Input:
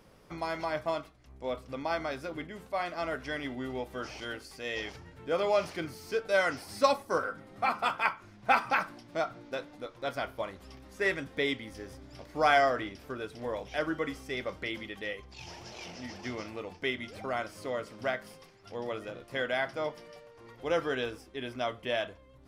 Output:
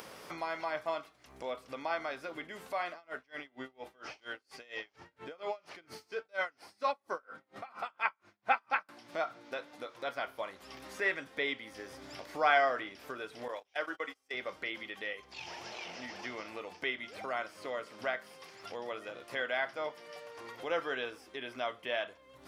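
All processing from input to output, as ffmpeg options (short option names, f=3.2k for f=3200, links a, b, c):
-filter_complex "[0:a]asettb=1/sr,asplit=3[a][b][c];[a]atrim=end=2.934[d];[b]atrim=start=2.93:end=8.89,asetpts=PTS-STARTPTS,afade=t=in:d=0.004:c=qsin,afade=t=out:st=5.956:d=0.004:c=qsin,highshelf=f=6.9k:g=-11.5,aeval=exprs='val(0)*pow(10,-33*(0.5-0.5*cos(2*PI*4.3*n/s))/20)':c=same[e];[c]atrim=start=8.886[f];[d][e]acrossfade=d=0.004:c1=hsin:c2=qsin[g];[g][f]acrossfade=d=0.004:c1=qsin:c2=hsin,asettb=1/sr,asplit=3[h][i][j];[h]atrim=end=13.484[k];[i]atrim=start=13.48:end=14.34,asetpts=PTS-STARTPTS,afade=t=in:d=0.004:c=qsin,afade=t=out:st=0.856:d=0.004:c=qsin,agate=range=-29dB:threshold=-37dB:ratio=16:release=100:detection=peak,equalizer=f=130:w=0.71:g=-13[l];[j]atrim=start=14.336[m];[k][l]acrossfade=d=0.004:c1=hsin:c2=qsin[n];[n][m]acrossfade=d=0.004:c1=qsin:c2=hsin,acrossover=split=3800[o][p];[p]acompressor=threshold=-60dB:ratio=4:attack=1:release=60[q];[o][q]amix=inputs=2:normalize=0,highpass=f=740:p=1,acompressor=mode=upward:threshold=-37dB:ratio=2.5"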